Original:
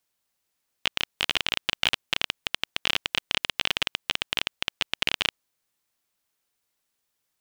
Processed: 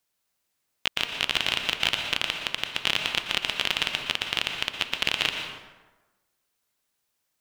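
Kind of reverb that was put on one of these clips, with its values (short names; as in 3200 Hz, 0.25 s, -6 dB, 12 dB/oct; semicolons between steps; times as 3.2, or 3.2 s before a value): plate-style reverb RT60 1.2 s, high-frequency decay 0.6×, pre-delay 0.105 s, DRR 4 dB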